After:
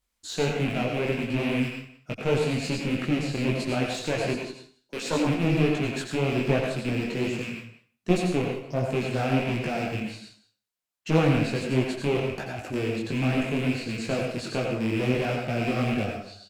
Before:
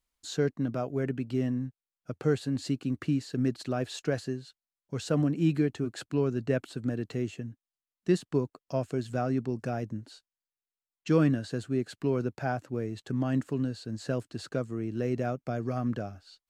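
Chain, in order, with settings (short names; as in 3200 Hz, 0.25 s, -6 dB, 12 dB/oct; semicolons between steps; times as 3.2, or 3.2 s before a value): rattling part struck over -36 dBFS, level -27 dBFS; 4.33–5.27 steep high-pass 230 Hz 36 dB/oct; 8.42–8.85 bell 2000 Hz -13 dB 1.8 oct; 12.17–12.73 negative-ratio compressor -40 dBFS, ratio -1; one-sided clip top -34.5 dBFS; outdoor echo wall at 31 m, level -15 dB; reverb RT60 0.40 s, pre-delay 81 ms, DRR 2 dB; detuned doubles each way 47 cents; gain +8 dB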